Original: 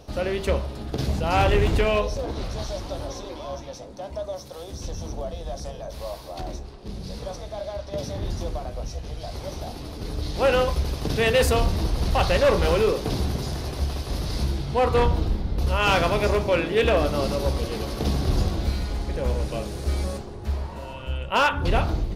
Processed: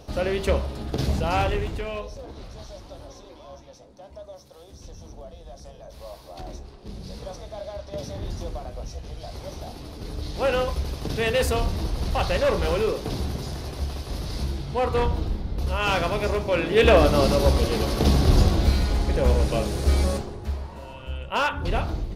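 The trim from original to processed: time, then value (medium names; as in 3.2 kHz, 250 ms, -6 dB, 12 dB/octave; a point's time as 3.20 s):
1.20 s +1 dB
1.75 s -10 dB
5.54 s -10 dB
6.71 s -3 dB
16.46 s -3 dB
16.91 s +5 dB
20.17 s +5 dB
20.58 s -3.5 dB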